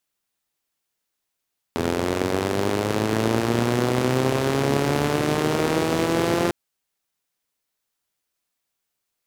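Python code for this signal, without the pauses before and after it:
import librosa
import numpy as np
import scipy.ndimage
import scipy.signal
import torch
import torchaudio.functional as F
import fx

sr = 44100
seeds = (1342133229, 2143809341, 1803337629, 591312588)

y = fx.engine_four_rev(sr, seeds[0], length_s=4.75, rpm=2500, resonances_hz=(130.0, 240.0, 360.0), end_rpm=5200)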